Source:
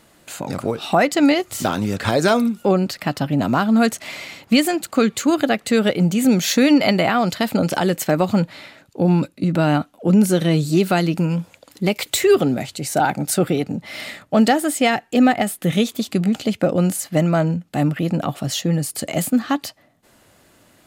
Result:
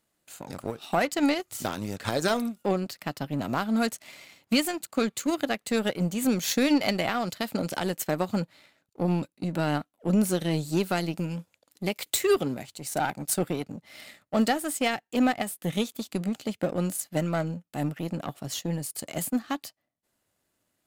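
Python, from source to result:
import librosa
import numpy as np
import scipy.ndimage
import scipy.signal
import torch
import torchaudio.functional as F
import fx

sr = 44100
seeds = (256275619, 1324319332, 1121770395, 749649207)

y = fx.high_shelf(x, sr, hz=6000.0, db=7.0)
y = fx.power_curve(y, sr, exponent=1.4)
y = y * 10.0 ** (-6.0 / 20.0)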